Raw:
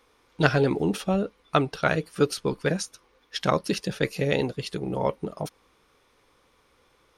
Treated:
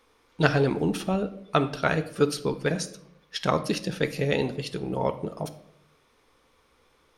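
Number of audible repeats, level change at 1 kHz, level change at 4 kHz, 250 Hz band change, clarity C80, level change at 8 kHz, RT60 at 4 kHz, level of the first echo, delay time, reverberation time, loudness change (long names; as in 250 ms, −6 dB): no echo audible, −0.5 dB, −0.5 dB, −0.5 dB, 17.0 dB, −1.0 dB, 0.45 s, no echo audible, no echo audible, 0.70 s, −0.5 dB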